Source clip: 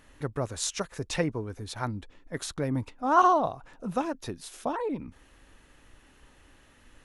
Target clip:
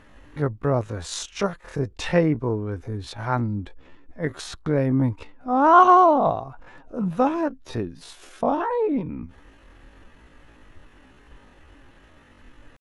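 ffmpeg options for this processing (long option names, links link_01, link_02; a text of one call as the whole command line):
ffmpeg -i in.wav -af "acontrast=54,aemphasis=mode=reproduction:type=75kf,atempo=0.55,volume=2dB" out.wav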